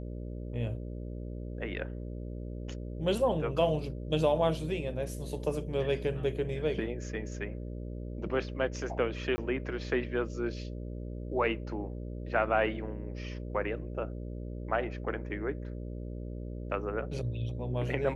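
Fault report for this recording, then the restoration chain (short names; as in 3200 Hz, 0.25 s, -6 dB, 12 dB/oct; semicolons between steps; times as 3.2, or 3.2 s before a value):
buzz 60 Hz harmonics 10 -39 dBFS
9.36–9.38 gap 20 ms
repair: de-hum 60 Hz, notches 10; interpolate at 9.36, 20 ms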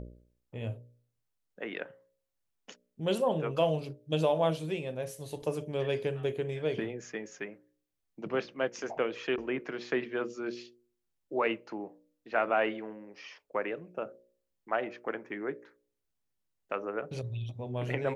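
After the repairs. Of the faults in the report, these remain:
none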